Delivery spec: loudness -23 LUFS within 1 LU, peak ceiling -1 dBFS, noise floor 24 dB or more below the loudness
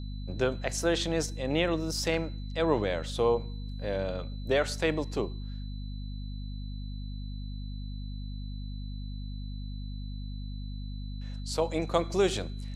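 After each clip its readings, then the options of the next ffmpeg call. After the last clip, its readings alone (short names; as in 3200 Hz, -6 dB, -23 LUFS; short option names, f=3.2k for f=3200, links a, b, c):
hum 50 Hz; harmonics up to 250 Hz; hum level -35 dBFS; steady tone 4000 Hz; tone level -53 dBFS; loudness -32.5 LUFS; peak -10.5 dBFS; loudness target -23.0 LUFS
-> -af "bandreject=f=50:t=h:w=4,bandreject=f=100:t=h:w=4,bandreject=f=150:t=h:w=4,bandreject=f=200:t=h:w=4,bandreject=f=250:t=h:w=4"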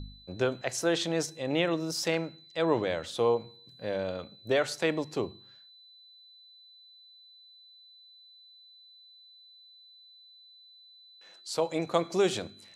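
hum none; steady tone 4000 Hz; tone level -53 dBFS
-> -af "bandreject=f=4k:w=30"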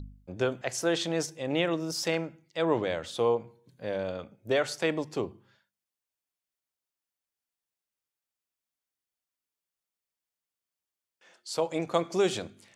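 steady tone none; loudness -30.5 LUFS; peak -11.0 dBFS; loudness target -23.0 LUFS
-> -af "volume=7.5dB"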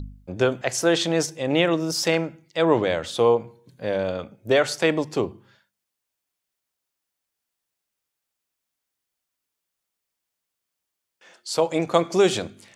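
loudness -23.0 LUFS; peak -3.5 dBFS; noise floor -83 dBFS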